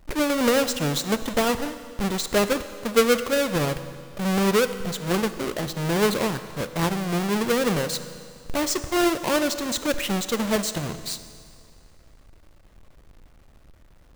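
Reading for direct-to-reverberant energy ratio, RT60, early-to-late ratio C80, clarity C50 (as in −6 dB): 11.5 dB, 2.2 s, 13.0 dB, 12.0 dB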